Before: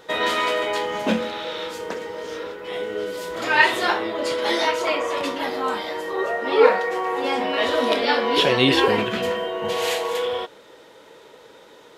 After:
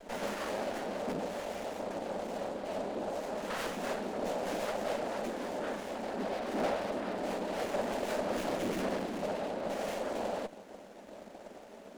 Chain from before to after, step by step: noise-vocoded speech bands 6; tone controls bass +14 dB, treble +8 dB; hard clipper -16.5 dBFS, distortion -7 dB; peak limiter -24.5 dBFS, peak gain reduction 8 dB; elliptic high-pass 180 Hz; peaking EQ 590 Hz +9.5 dB 0.48 oct; sliding maximum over 9 samples; trim -7 dB

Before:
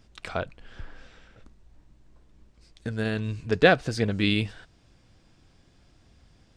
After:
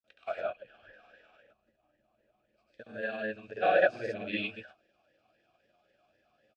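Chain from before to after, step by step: gated-style reverb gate 140 ms rising, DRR -7 dB; granulator, pitch spread up and down by 0 st; talking filter a-e 3.8 Hz

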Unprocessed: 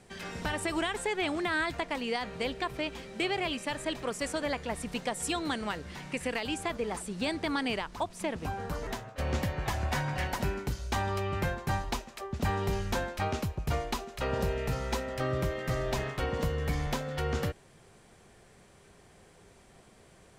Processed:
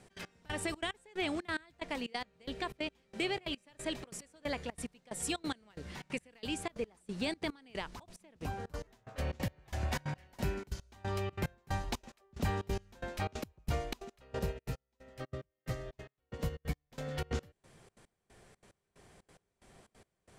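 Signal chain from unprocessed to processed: dynamic bell 1.1 kHz, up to -4 dB, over -44 dBFS, Q 0.97; trance gate "x.x...xx" 182 bpm -24 dB; 14.39–16.92 s: upward expansion 2.5:1, over -44 dBFS; trim -2.5 dB

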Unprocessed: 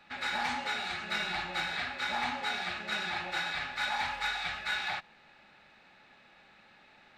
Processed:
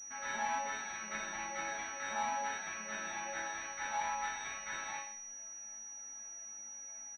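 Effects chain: chord resonator A3 major, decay 0.53 s; on a send: delay 124 ms -13 dB; on the sum: class-D stage that switches slowly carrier 5.8 kHz; trim +15.5 dB

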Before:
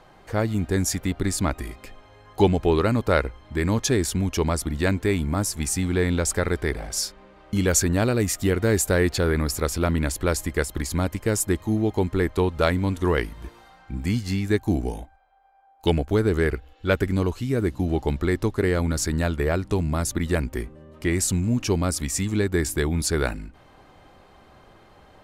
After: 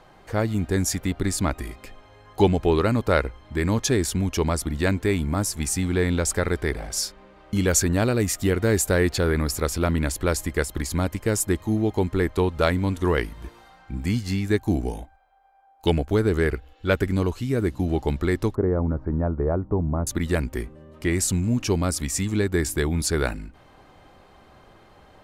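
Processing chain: 18.55–20.07 s: low-pass 1.1 kHz 24 dB/octave

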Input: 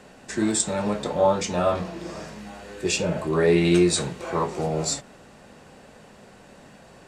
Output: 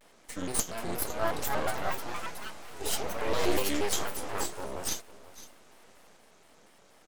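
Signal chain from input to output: Bessel high-pass 290 Hz, order 4; treble shelf 7.1 kHz +9 dB; half-wave rectifier; ever faster or slower copies 546 ms, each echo +4 st, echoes 3; on a send: delay 507 ms -17 dB; on the sum: vibrato with a chosen wave square 4.2 Hz, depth 250 cents; trim -6 dB

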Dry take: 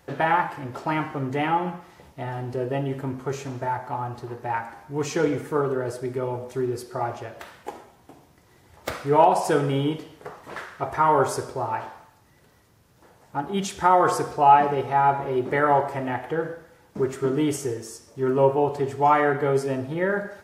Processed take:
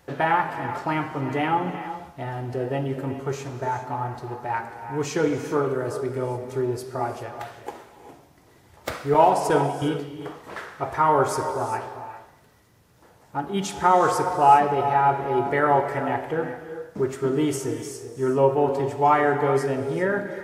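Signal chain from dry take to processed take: 9.14–9.82 s: gate with hold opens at -13 dBFS; gated-style reverb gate 430 ms rising, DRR 9 dB

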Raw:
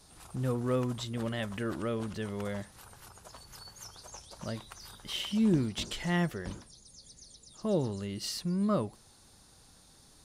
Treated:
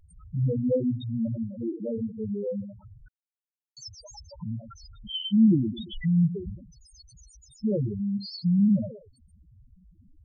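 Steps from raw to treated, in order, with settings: 1.36–2.23 s: expander -31 dBFS; in parallel at 0 dB: compression, threshold -39 dBFS, peak gain reduction 16 dB; on the sum: thinning echo 116 ms, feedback 24%, high-pass 220 Hz, level -8 dB; loudest bins only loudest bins 2; 3.08–3.77 s: word length cut 6-bit, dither none; trim +7.5 dB

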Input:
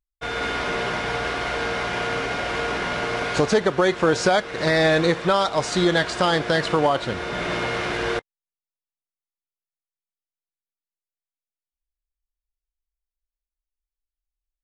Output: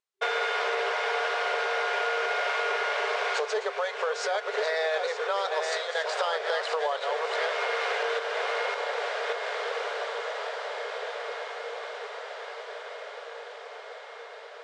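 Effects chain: backward echo that repeats 583 ms, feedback 40%, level -7 dB; in parallel at -0.5 dB: gain riding within 4 dB; on the sum: treble shelf 7.5 kHz -9.5 dB; echo that smears into a reverb 1787 ms, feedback 55%, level -14 dB; compression 6:1, threshold -25 dBFS, peak gain reduction 15 dB; FFT band-pass 390–9700 Hz

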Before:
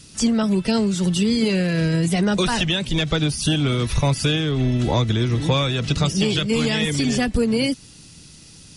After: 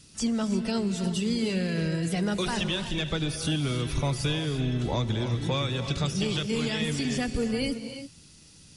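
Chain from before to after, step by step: gated-style reverb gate 370 ms rising, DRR 8 dB; trim -8.5 dB

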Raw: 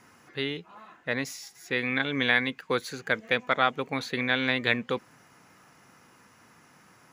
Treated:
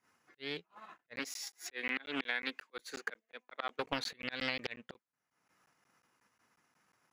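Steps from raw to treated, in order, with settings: slow attack 604 ms; bass shelf 360 Hz -7 dB; transient shaper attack 0 dB, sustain -6 dB; expander -43 dBFS; 1.19–3.85 s: high-pass 250 Hz 24 dB/octave; compression 10:1, threshold -41 dBFS, peak gain reduction 11.5 dB; crackling interface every 0.18 s, samples 512, zero, from 0.98 s; loudspeaker Doppler distortion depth 0.52 ms; trim +9.5 dB

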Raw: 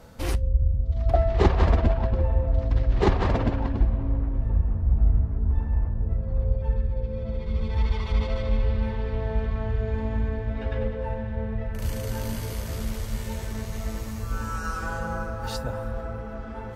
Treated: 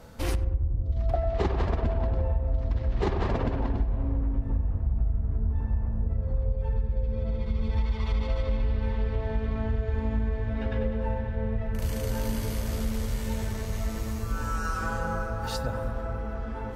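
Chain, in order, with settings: filtered feedback delay 95 ms, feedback 82%, low-pass 1.2 kHz, level -9 dB; compression, threshold -22 dBFS, peak gain reduction 9 dB

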